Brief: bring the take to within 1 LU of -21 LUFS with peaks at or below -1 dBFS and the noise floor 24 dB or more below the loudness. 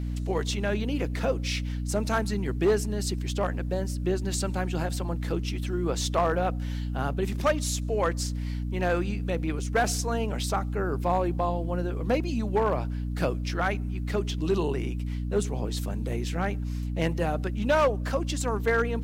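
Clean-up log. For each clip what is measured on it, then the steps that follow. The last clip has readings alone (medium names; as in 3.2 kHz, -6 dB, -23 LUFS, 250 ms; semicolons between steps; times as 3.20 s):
clipped samples 0.4%; clipping level -16.5 dBFS; hum 60 Hz; highest harmonic 300 Hz; hum level -28 dBFS; loudness -28.5 LUFS; peak level -16.5 dBFS; loudness target -21.0 LUFS
-> clip repair -16.5 dBFS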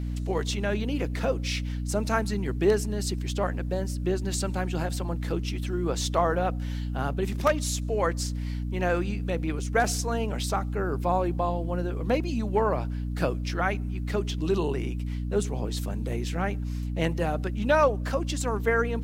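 clipped samples 0.0%; hum 60 Hz; highest harmonic 300 Hz; hum level -28 dBFS
-> de-hum 60 Hz, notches 5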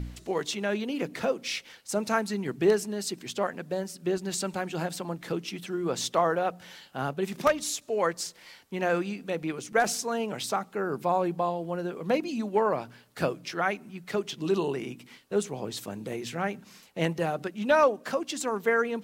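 hum not found; loudness -29.5 LUFS; peak level -8.5 dBFS; loudness target -21.0 LUFS
-> trim +8.5 dB; peak limiter -1 dBFS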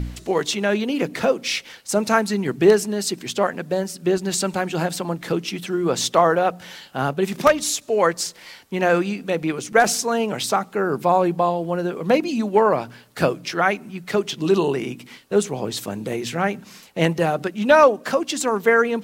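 loudness -21.0 LUFS; peak level -1.0 dBFS; noise floor -46 dBFS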